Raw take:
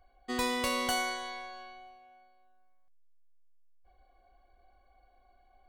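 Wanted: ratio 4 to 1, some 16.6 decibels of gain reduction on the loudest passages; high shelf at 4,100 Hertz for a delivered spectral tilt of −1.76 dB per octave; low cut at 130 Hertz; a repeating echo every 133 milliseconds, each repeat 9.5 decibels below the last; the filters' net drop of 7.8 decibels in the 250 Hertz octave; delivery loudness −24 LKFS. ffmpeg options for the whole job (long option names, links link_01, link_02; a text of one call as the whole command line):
ffmpeg -i in.wav -af "highpass=130,equalizer=frequency=250:width_type=o:gain=-8,highshelf=frequency=4100:gain=3,acompressor=threshold=-48dB:ratio=4,aecho=1:1:133|266|399|532:0.335|0.111|0.0365|0.012,volume=24dB" out.wav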